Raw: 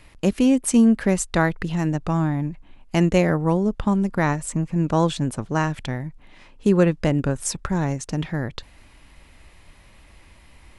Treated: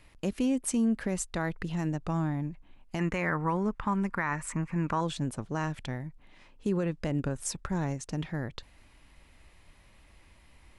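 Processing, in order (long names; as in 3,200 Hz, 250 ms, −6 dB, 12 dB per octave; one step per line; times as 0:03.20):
0:02.99–0:05.01: flat-topped bell 1,500 Hz +11.5 dB
brickwall limiter −12 dBFS, peak gain reduction 11 dB
level −8 dB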